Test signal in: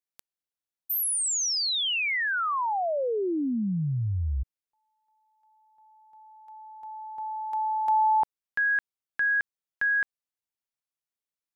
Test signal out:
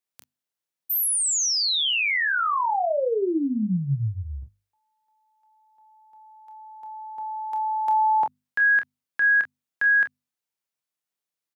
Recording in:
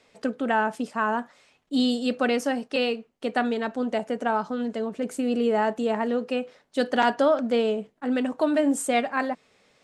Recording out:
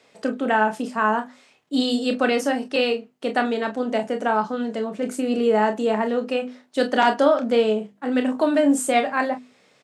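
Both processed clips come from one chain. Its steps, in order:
high-pass filter 97 Hz 24 dB per octave
mains-hum notches 50/100/150/200/250 Hz
on a send: ambience of single reflections 28 ms −8 dB, 43 ms −12.5 dB
on the sum: level +3 dB

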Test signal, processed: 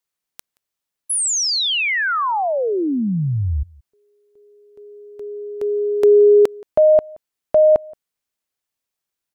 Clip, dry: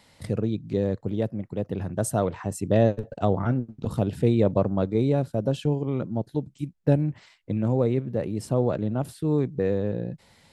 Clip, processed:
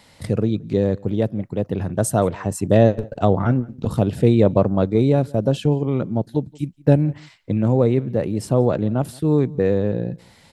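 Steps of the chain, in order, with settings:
slap from a distant wall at 30 metres, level −25 dB
level +6 dB

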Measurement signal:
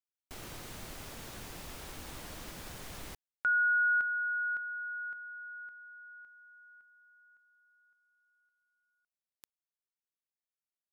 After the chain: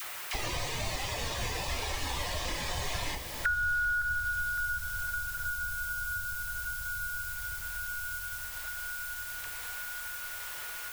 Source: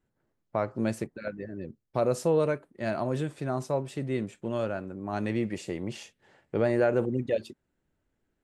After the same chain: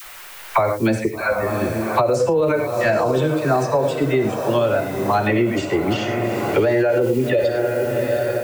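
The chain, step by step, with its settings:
spectral dynamics exaggerated over time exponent 1.5
low-pass filter 6,800 Hz 12 dB per octave
reverb whose tail is shaped and stops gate 130 ms flat, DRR 6.5 dB
noise reduction from a noise print of the clip's start 6 dB
feedback delay with all-pass diffusion 763 ms, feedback 54%, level −13 dB
background noise blue −66 dBFS
parametric band 200 Hz −11 dB 1.5 octaves
all-pass dispersion lows, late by 40 ms, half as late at 830 Hz
automatic gain control gain up to 3.5 dB
dynamic equaliser 320 Hz, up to +5 dB, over −41 dBFS, Q 1.3
boost into a limiter +22 dB
multiband upward and downward compressor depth 100%
level −8.5 dB

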